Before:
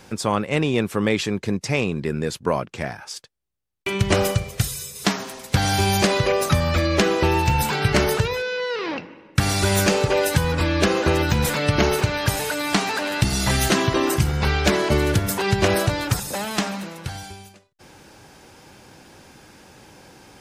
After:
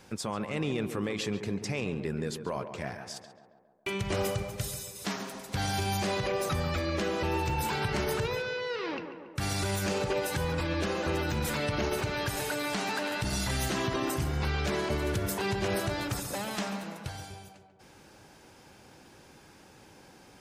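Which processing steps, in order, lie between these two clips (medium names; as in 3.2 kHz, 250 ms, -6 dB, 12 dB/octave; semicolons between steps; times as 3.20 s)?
peak limiter -14 dBFS, peak gain reduction 9.5 dB; tape echo 139 ms, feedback 70%, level -7 dB, low-pass 1.6 kHz; trim -8 dB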